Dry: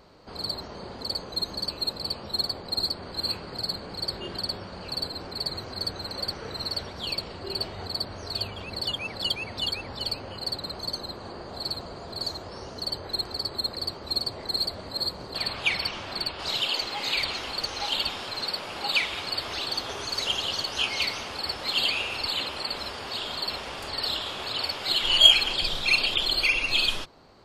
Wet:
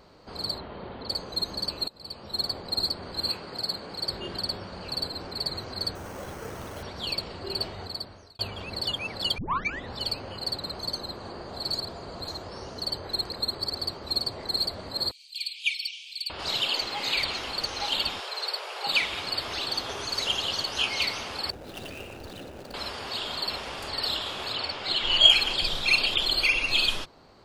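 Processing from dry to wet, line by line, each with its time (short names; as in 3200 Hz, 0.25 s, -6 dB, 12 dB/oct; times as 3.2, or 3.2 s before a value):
0.58–1.09 steep low-pass 3800 Hz 48 dB/oct
1.88–2.52 fade in, from -23 dB
3.29–4.07 low shelf 120 Hz -10.5 dB
5.95–6.83 careless resampling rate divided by 6×, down filtered, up hold
7.67–8.39 fade out
9.38 tape start 0.55 s
11.73–12.28 reverse
13.3–13.79 reverse
15.11–16.3 rippled Chebyshev high-pass 2300 Hz, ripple 3 dB
18.2–18.87 elliptic high-pass 400 Hz
21.5–22.74 median filter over 41 samples
24.55–25.3 air absorption 81 m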